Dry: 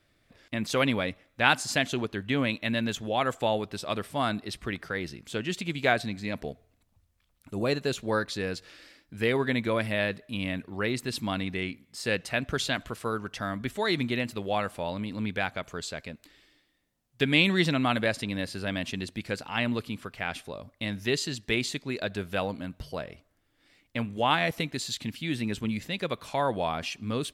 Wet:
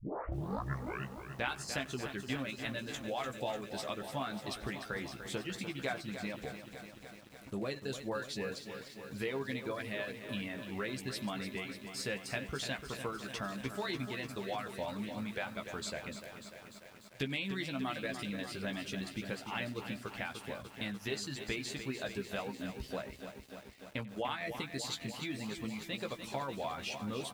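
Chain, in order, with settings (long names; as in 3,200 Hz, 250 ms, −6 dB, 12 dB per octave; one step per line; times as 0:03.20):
turntable start at the beginning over 1.42 s
downward compressor 3 to 1, threshold −36 dBFS, peak gain reduction 14.5 dB
reverb reduction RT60 1.1 s
double-tracking delay 15 ms −6 dB
slap from a distant wall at 16 metres, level −21 dB
feedback echo at a low word length 296 ms, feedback 80%, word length 9 bits, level −9 dB
level −2 dB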